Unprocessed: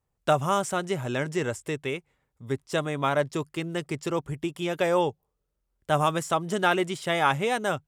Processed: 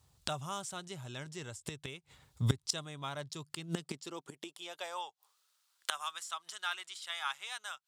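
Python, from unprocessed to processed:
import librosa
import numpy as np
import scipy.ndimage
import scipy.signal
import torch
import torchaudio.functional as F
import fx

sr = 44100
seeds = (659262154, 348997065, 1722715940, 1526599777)

y = fx.graphic_eq(x, sr, hz=(250, 500, 2000, 4000, 8000), db=(-5, -7, -5, 9, 4))
y = fx.gate_flip(y, sr, shuts_db=-28.0, range_db=-25)
y = fx.filter_sweep_highpass(y, sr, from_hz=75.0, to_hz=1300.0, start_s=3.12, end_s=5.33, q=1.4)
y = F.gain(torch.from_numpy(y), 12.0).numpy()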